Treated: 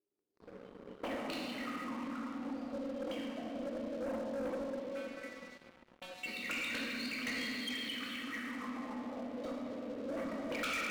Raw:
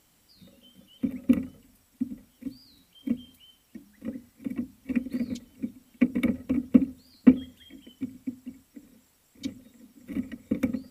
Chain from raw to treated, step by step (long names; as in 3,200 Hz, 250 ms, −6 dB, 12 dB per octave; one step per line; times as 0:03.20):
feedback delay that plays each chunk backwards 137 ms, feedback 85%, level −9.5 dB
envelope filter 380–4,300 Hz, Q 17, up, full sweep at −21.5 dBFS
0:04.53–0:06.26: stiff-string resonator 180 Hz, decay 0.45 s, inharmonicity 0.002
convolution reverb RT60 2.9 s, pre-delay 6 ms, DRR −4 dB
leveller curve on the samples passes 5
level +4.5 dB